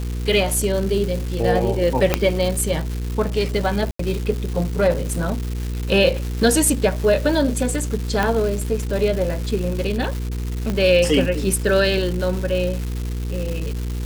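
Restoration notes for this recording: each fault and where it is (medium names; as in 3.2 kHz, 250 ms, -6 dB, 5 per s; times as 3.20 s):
crackle 480 per s -26 dBFS
hum 60 Hz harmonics 8 -25 dBFS
2.14 s: pop -1 dBFS
3.91–3.99 s: dropout 84 ms
8.23 s: pop -6 dBFS
10.70 s: pop -11 dBFS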